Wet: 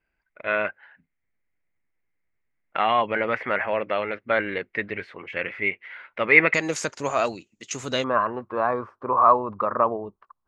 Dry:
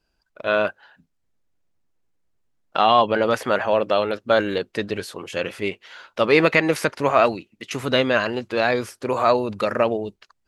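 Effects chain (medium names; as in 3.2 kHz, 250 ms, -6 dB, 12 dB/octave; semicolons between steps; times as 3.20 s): resonant low-pass 2.1 kHz, resonance Q 7.4, from 6.54 s 6.9 kHz, from 8.04 s 1.1 kHz; trim -7 dB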